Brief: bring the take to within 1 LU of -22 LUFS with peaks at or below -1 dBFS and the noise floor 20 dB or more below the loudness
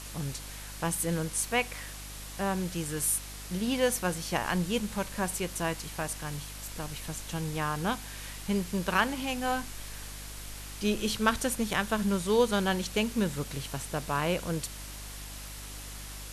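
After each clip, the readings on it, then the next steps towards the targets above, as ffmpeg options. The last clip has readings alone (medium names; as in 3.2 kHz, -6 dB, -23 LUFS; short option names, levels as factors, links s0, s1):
hum 50 Hz; highest harmonic 300 Hz; hum level -43 dBFS; noise floor -43 dBFS; noise floor target -52 dBFS; loudness -31.5 LUFS; peak level -11.5 dBFS; loudness target -22.0 LUFS
-> -af "bandreject=f=50:t=h:w=4,bandreject=f=100:t=h:w=4,bandreject=f=150:t=h:w=4,bandreject=f=200:t=h:w=4,bandreject=f=250:t=h:w=4,bandreject=f=300:t=h:w=4"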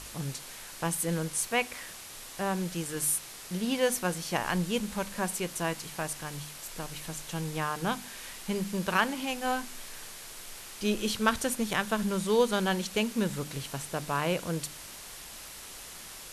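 hum not found; noise floor -45 dBFS; noise floor target -51 dBFS
-> -af "afftdn=nr=6:nf=-45"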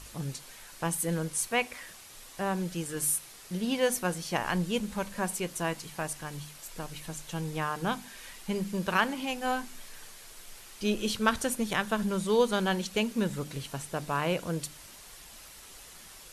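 noise floor -50 dBFS; noise floor target -52 dBFS
-> -af "afftdn=nr=6:nf=-50"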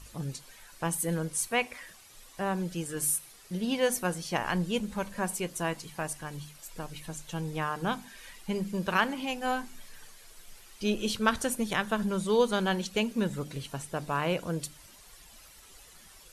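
noise floor -54 dBFS; loudness -31.5 LUFS; peak level -11.5 dBFS; loudness target -22.0 LUFS
-> -af "volume=2.99"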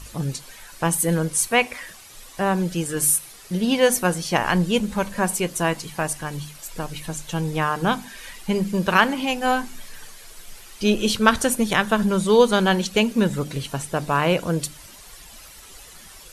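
loudness -22.0 LUFS; peak level -2.0 dBFS; noise floor -45 dBFS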